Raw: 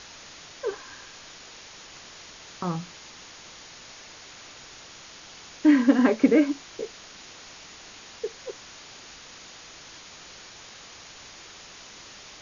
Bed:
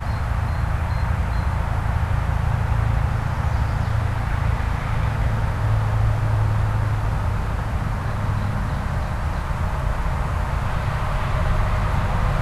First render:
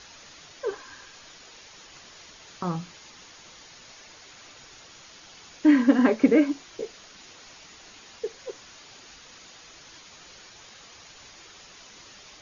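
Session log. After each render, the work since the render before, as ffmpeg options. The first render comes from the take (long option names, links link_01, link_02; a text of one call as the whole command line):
ffmpeg -i in.wav -af "afftdn=noise_reduction=6:noise_floor=-47" out.wav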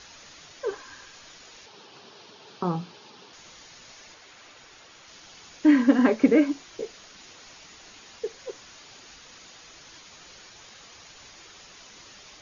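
ffmpeg -i in.wav -filter_complex "[0:a]asettb=1/sr,asplit=3[link_01][link_02][link_03];[link_01]atrim=end=1.664[link_04];[link_02]atrim=start=1.66:end=3.33,asetpts=PTS-STARTPTS,afade=type=in:duration=0.004:curve=qsin,afade=type=out:start_time=1.666:duration=0.004:curve=qsin,highpass=frequency=100:width=0.5412,highpass=frequency=100:width=1.3066,equalizer=frequency=220:width_type=q:width=4:gain=5,equalizer=frequency=410:width_type=q:width=4:gain=10,equalizer=frequency=850:width_type=q:width=4:gain=5,equalizer=frequency=2000:width_type=q:width=4:gain=-8,lowpass=frequency=5100:width=0.5412,lowpass=frequency=5100:width=1.3066[link_05];[link_03]atrim=start=3.326[link_06];[link_04][link_05]acrossfade=duration=0.004:curve1=hsin:curve2=qsin[link_07];[link_07][link_06]acrossfade=duration=0.004:curve1=qsin:curve2=hsin,asettb=1/sr,asplit=3[link_08][link_09][link_10];[link_08]atrim=end=4.144[link_11];[link_09]atrim=start=4.14:end=5.08,asetpts=PTS-STARTPTS,afade=type=in:duration=0.004:curve=qsin,afade=type=out:start_time=0.936:duration=0.004:curve=qsin,bass=frequency=250:gain=-5,treble=frequency=4000:gain=-5[link_12];[link_10]atrim=start=5.076[link_13];[link_11][link_12]acrossfade=duration=0.004:curve1=hsin:curve2=qsin[link_14];[link_14][link_13]acrossfade=duration=0.004:curve1=qsin:curve2=hsin" out.wav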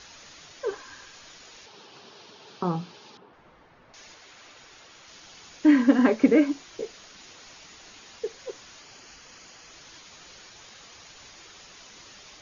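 ffmpeg -i in.wav -filter_complex "[0:a]asettb=1/sr,asplit=3[link_01][link_02][link_03];[link_01]atrim=end=3.174[link_04];[link_02]atrim=start=3.17:end=3.94,asetpts=PTS-STARTPTS,afade=type=in:duration=0.004:curve=qsin,afade=type=out:start_time=0.766:duration=0.004:curve=qsin,lowpass=1300[link_05];[link_03]atrim=start=3.936[link_06];[link_04][link_05]acrossfade=duration=0.004:curve1=hsin:curve2=qsin[link_07];[link_07][link_06]acrossfade=duration=0.004:curve1=qsin:curve2=hsin,asettb=1/sr,asplit=3[link_08][link_09][link_10];[link_08]atrim=end=8.814[link_11];[link_09]atrim=start=8.81:end=9.71,asetpts=PTS-STARTPTS,afade=type=in:duration=0.004:curve=qsin,afade=type=out:start_time=0.896:duration=0.004:curve=qsin,bandreject=frequency=3700:width=6.1[link_12];[link_10]atrim=start=9.706[link_13];[link_11][link_12]acrossfade=duration=0.004:curve1=hsin:curve2=qsin[link_14];[link_14][link_13]acrossfade=duration=0.004:curve1=qsin:curve2=hsin" out.wav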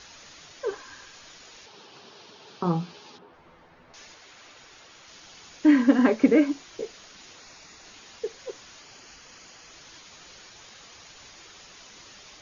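ffmpeg -i in.wav -filter_complex "[0:a]asettb=1/sr,asplit=3[link_01][link_02][link_03];[link_01]atrim=end=2.654[link_04];[link_02]atrim=start=2.65:end=4.05,asetpts=PTS-STARTPTS,afade=type=in:duration=0.004:curve=qsin,afade=type=out:start_time=1.396:duration=0.004:curve=qsin,asplit=2[link_05][link_06];[link_06]adelay=12,volume=-5.5dB[link_07];[link_05][link_07]amix=inputs=2:normalize=0,atrim=end_sample=61740[link_08];[link_03]atrim=start=4.046[link_09];[link_04][link_08]acrossfade=duration=0.004:curve1=hsin:curve2=qsin[link_10];[link_10][link_09]acrossfade=duration=0.004:curve1=qsin:curve2=hsin,asettb=1/sr,asplit=3[link_11][link_12][link_13];[link_11]atrim=end=7.404[link_14];[link_12]atrim=start=7.4:end=7.85,asetpts=PTS-STARTPTS,afade=type=in:duration=0.004:curve=qsin,afade=type=out:start_time=0.446:duration=0.004:curve=qsin,bandreject=frequency=3100:width=5.3[link_15];[link_13]atrim=start=7.846[link_16];[link_14][link_15]acrossfade=duration=0.004:curve1=hsin:curve2=qsin[link_17];[link_17][link_16]acrossfade=duration=0.004:curve1=qsin:curve2=hsin" out.wav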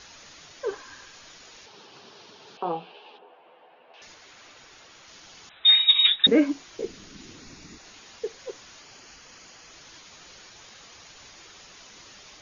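ffmpeg -i in.wav -filter_complex "[0:a]asettb=1/sr,asplit=3[link_01][link_02][link_03];[link_01]atrim=end=2.574[link_04];[link_02]atrim=start=2.57:end=4.02,asetpts=PTS-STARTPTS,afade=type=in:duration=0.004:curve=qsin,afade=type=out:start_time=1.446:duration=0.004:curve=qsin,highpass=470,equalizer=frequency=470:width_type=q:width=4:gain=6,equalizer=frequency=730:width_type=q:width=4:gain=7,equalizer=frequency=1300:width_type=q:width=4:gain=-6,equalizer=frequency=2000:width_type=q:width=4:gain=-7,equalizer=frequency=2800:width_type=q:width=4:gain=7,lowpass=frequency=3400:width=0.5412,lowpass=frequency=3400:width=1.3066[link_05];[link_03]atrim=start=4.016[link_06];[link_04][link_05]acrossfade=duration=0.004:curve1=hsin:curve2=qsin[link_07];[link_07][link_06]acrossfade=duration=0.004:curve1=qsin:curve2=hsin,asettb=1/sr,asplit=3[link_08][link_09][link_10];[link_08]atrim=end=5.494[link_11];[link_09]atrim=start=5.49:end=6.27,asetpts=PTS-STARTPTS,afade=type=in:duration=0.004:curve=qsin,afade=type=out:start_time=0.776:duration=0.004:curve=qsin,lowpass=frequency=3400:width_type=q:width=0.5098,lowpass=frequency=3400:width_type=q:width=0.6013,lowpass=frequency=3400:width_type=q:width=0.9,lowpass=frequency=3400:width_type=q:width=2.563,afreqshift=-4000[link_12];[link_10]atrim=start=6.266[link_13];[link_11][link_12]acrossfade=duration=0.004:curve1=hsin:curve2=qsin[link_14];[link_14][link_13]acrossfade=duration=0.004:curve1=qsin:curve2=hsin,asettb=1/sr,asplit=3[link_15][link_16][link_17];[link_15]atrim=end=6.844[link_18];[link_16]atrim=start=6.84:end=7.78,asetpts=PTS-STARTPTS,afade=type=in:duration=0.004:curve=qsin,afade=type=out:start_time=0.936:duration=0.004:curve=qsin,lowshelf=frequency=420:width_type=q:width=1.5:gain=11[link_19];[link_17]atrim=start=7.776[link_20];[link_18][link_19]acrossfade=duration=0.004:curve1=hsin:curve2=qsin[link_21];[link_21][link_20]acrossfade=duration=0.004:curve1=qsin:curve2=hsin" out.wav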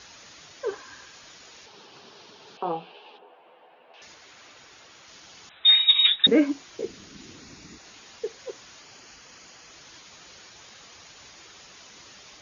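ffmpeg -i in.wav -af "highpass=49" out.wav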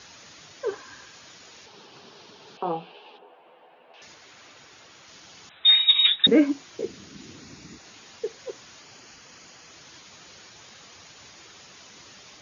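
ffmpeg -i in.wav -af "highpass=86,lowshelf=frequency=210:gain=5.5" out.wav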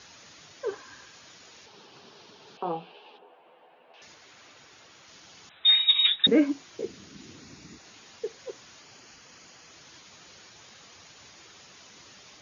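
ffmpeg -i in.wav -af "volume=-3dB" out.wav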